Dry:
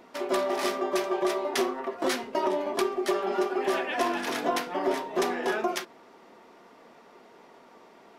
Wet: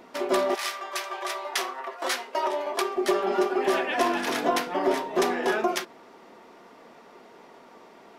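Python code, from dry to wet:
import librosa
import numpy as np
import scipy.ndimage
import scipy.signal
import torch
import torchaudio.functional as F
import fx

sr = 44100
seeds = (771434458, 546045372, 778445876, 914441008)

y = fx.highpass(x, sr, hz=fx.line((0.54, 1400.0), (2.95, 480.0)), slope=12, at=(0.54, 2.95), fade=0.02)
y = F.gain(torch.from_numpy(y), 3.0).numpy()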